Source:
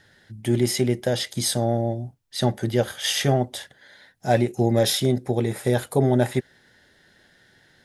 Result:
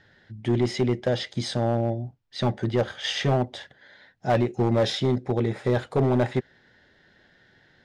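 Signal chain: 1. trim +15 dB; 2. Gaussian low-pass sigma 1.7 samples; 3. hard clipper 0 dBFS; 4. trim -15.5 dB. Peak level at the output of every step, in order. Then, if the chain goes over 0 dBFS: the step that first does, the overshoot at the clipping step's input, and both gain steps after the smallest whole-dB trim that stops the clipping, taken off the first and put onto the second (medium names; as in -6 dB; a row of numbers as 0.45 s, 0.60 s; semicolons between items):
+9.0 dBFS, +8.5 dBFS, 0.0 dBFS, -15.5 dBFS; step 1, 8.5 dB; step 1 +6 dB, step 4 -6.5 dB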